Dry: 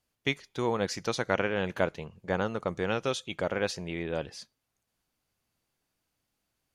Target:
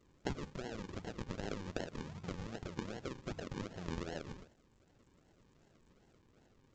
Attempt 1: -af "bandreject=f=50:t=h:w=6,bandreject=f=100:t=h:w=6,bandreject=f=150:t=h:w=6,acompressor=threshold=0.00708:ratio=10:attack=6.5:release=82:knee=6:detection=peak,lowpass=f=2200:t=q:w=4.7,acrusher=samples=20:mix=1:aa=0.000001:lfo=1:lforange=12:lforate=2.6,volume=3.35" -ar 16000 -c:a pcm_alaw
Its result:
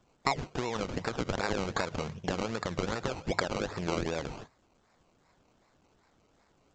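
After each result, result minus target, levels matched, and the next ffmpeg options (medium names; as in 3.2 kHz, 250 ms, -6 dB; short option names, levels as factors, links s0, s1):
compression: peak gain reduction -10.5 dB; decimation with a swept rate: distortion -9 dB
-af "bandreject=f=50:t=h:w=6,bandreject=f=100:t=h:w=6,bandreject=f=150:t=h:w=6,acompressor=threshold=0.00188:ratio=10:attack=6.5:release=82:knee=6:detection=peak,lowpass=f=2200:t=q:w=4.7,acrusher=samples=20:mix=1:aa=0.000001:lfo=1:lforange=12:lforate=2.6,volume=3.35" -ar 16000 -c:a pcm_alaw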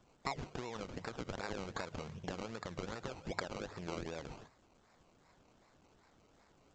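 decimation with a swept rate: distortion -9 dB
-af "bandreject=f=50:t=h:w=6,bandreject=f=100:t=h:w=6,bandreject=f=150:t=h:w=6,acompressor=threshold=0.00188:ratio=10:attack=6.5:release=82:knee=6:detection=peak,lowpass=f=2200:t=q:w=4.7,acrusher=samples=52:mix=1:aa=0.000001:lfo=1:lforange=31.2:lforate=2.6,volume=3.35" -ar 16000 -c:a pcm_alaw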